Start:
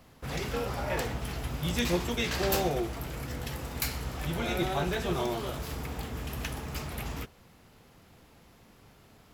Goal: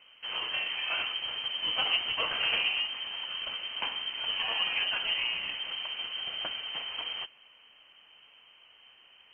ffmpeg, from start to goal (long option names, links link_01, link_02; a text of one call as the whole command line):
ffmpeg -i in.wav -filter_complex "[0:a]highshelf=frequency=2300:gain=8.5,asplit=2[link_01][link_02];[link_02]acrusher=samples=27:mix=1:aa=0.000001,volume=-6dB[link_03];[link_01][link_03]amix=inputs=2:normalize=0,lowpass=frequency=2700:width_type=q:width=0.5098,lowpass=frequency=2700:width_type=q:width=0.6013,lowpass=frequency=2700:width_type=q:width=0.9,lowpass=frequency=2700:width_type=q:width=2.563,afreqshift=-3200,volume=-4dB" -ar 48000 -c:a sbc -b:a 128k out.sbc